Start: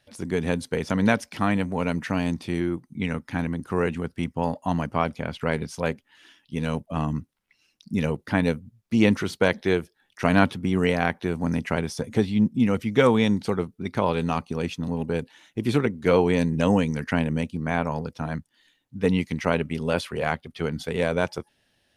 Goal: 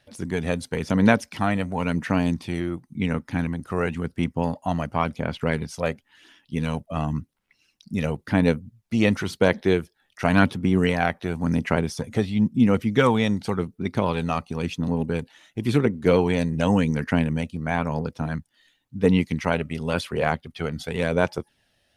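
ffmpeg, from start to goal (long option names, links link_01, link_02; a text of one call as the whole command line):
ffmpeg -i in.wav -af "aphaser=in_gain=1:out_gain=1:delay=1.6:decay=0.34:speed=0.94:type=sinusoidal" out.wav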